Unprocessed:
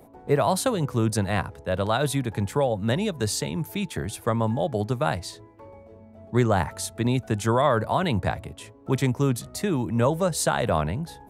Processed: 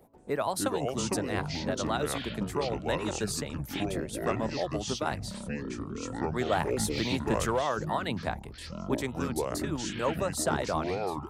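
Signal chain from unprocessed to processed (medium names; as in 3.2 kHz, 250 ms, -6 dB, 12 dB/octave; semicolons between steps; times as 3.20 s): harmonic-percussive split harmonic -14 dB; ever faster or slower copies 181 ms, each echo -6 st, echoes 3; 6.52–7.59 s: waveshaping leveller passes 1; trim -4.5 dB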